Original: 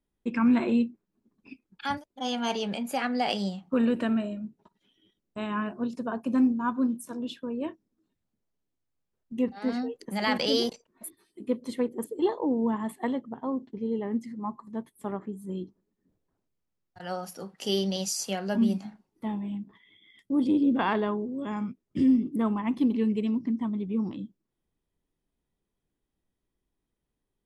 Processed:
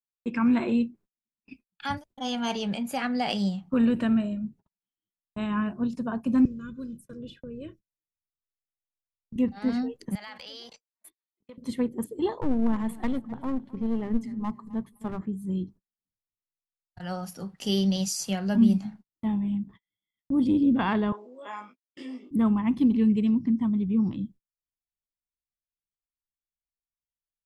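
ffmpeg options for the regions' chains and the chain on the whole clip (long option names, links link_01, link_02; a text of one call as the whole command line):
ffmpeg -i in.wav -filter_complex "[0:a]asettb=1/sr,asplit=3[link_01][link_02][link_03];[link_01]atrim=end=6.454[link_04];[link_02]atrim=start=6.45:end=9.36,asetpts=PTS-STARTPTS,afade=type=in:duration=0.004:curve=qsin,afade=type=out:start_time=2.906:duration=0.004:curve=qsin,aecho=1:1:2:0.67,atrim=end_sample=128331,acrossover=split=340|2700[link_05][link_06][link_07];[link_05]acompressor=threshold=-38dB:ratio=4[link_08];[link_06]acompressor=threshold=-45dB:ratio=4[link_09];[link_07]acompressor=threshold=-58dB:ratio=4[link_10];[link_08][link_09][link_10]amix=inputs=3:normalize=0,asuperstop=centerf=850:order=8:qfactor=1.8[link_11];[link_03]atrim=start=9.356[link_12];[link_04][link_11]acrossfade=duration=0.004:curve1=hsin:curve2=qsin[link_13];[link_13][link_12]acrossfade=duration=0.004:curve1=qsin:curve2=hsin,asettb=1/sr,asplit=3[link_14][link_15][link_16];[link_14]atrim=end=10.154[link_17];[link_15]atrim=start=10.15:end=11.58,asetpts=PTS-STARTPTS,afade=type=in:duration=0.004:curve=qsin,afade=type=out:start_time=1.426:duration=0.004:curve=qsin,acrossover=split=560 6000:gain=0.112 1 0.251[link_18][link_19][link_20];[link_18][link_19][link_20]amix=inputs=3:normalize=0,acompressor=threshold=-43dB:ratio=3:attack=3.2:release=140:knee=1:detection=peak,asoftclip=type=hard:threshold=-33dB[link_21];[link_16]atrim=start=11.576[link_22];[link_17][link_21]acrossfade=duration=0.004:curve1=hsin:curve2=qsin[link_23];[link_23][link_22]acrossfade=duration=0.004:curve1=qsin:curve2=hsin,asettb=1/sr,asplit=3[link_24][link_25][link_26];[link_24]atrim=end=12.414[link_27];[link_25]atrim=start=12.41:end=15.21,asetpts=PTS-STARTPTS,afade=type=in:duration=0.004:curve=qsin,afade=type=out:start_time=2.796:duration=0.004:curve=qsin,bandreject=frequency=50:width_type=h:width=6,bandreject=frequency=100:width_type=h:width=6,bandreject=frequency=150:width_type=h:width=6,bandreject=frequency=200:width_type=h:width=6,aeval=exprs='clip(val(0),-1,0.0251)':channel_layout=same,aecho=1:1:260|520|780:0.1|0.033|0.0109,atrim=end_sample=123480[link_28];[link_26]atrim=start=15.206[link_29];[link_27][link_28]acrossfade=duration=0.004:curve1=hsin:curve2=qsin[link_30];[link_30][link_29]acrossfade=duration=0.004:curve1=qsin:curve2=hsin,asettb=1/sr,asplit=3[link_31][link_32][link_33];[link_31]atrim=end=21.124[link_34];[link_32]atrim=start=21.12:end=22.31,asetpts=PTS-STARTPTS,afade=type=in:duration=0.004:curve=qsin,afade=type=out:start_time=1.186:duration=0.004:curve=qsin,highpass=frequency=500:width=0.5412,highpass=frequency=500:width=1.3066,highshelf=frequency=6900:gain=-5.5,asplit=2[link_35][link_36];[link_36]adelay=20,volume=-3dB[link_37];[link_35][link_37]amix=inputs=2:normalize=0,atrim=end_sample=52479[link_38];[link_33]atrim=start=22.306[link_39];[link_34][link_38]acrossfade=duration=0.004:curve1=hsin:curve2=qsin[link_40];[link_40][link_39]acrossfade=duration=0.004:curve1=qsin:curve2=hsin,agate=range=-34dB:threshold=-51dB:ratio=16:detection=peak,asubboost=boost=4.5:cutoff=180" out.wav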